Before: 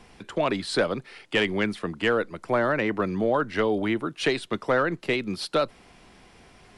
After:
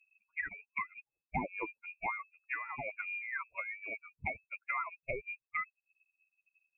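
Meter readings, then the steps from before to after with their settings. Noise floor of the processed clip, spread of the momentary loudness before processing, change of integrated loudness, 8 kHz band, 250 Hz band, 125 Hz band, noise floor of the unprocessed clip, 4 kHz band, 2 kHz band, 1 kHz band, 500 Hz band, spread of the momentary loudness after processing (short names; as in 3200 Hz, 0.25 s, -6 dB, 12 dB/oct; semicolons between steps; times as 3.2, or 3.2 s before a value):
under -85 dBFS, 4 LU, -13.5 dB, under -35 dB, -23.0 dB, -18.0 dB, -55 dBFS, under -35 dB, -8.5 dB, -11.0 dB, -23.0 dB, 6 LU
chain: per-bin expansion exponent 3; inverted band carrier 2600 Hz; treble ducked by the level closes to 1300 Hz, closed at -29 dBFS; gain -3 dB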